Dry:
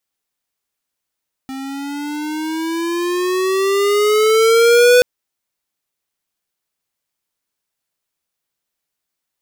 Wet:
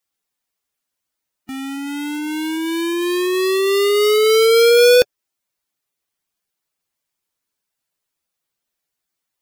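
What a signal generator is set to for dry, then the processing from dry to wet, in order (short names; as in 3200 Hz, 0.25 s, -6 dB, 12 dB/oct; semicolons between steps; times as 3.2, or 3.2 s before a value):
gliding synth tone square, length 3.53 s, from 264 Hz, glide +11 st, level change +19 dB, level -8.5 dB
bin magnitudes rounded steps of 15 dB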